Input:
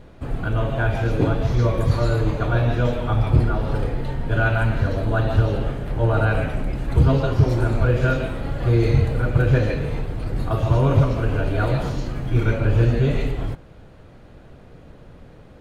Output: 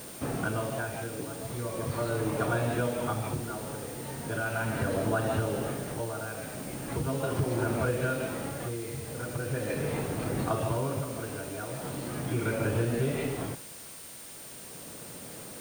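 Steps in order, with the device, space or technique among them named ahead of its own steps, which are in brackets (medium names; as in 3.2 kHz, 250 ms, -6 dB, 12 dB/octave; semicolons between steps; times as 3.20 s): medium wave at night (band-pass 170–3600 Hz; compression, threshold -27 dBFS, peak gain reduction 11 dB; tremolo 0.39 Hz, depth 67%; whistle 9 kHz -50 dBFS; white noise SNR 15 dB); trim +2 dB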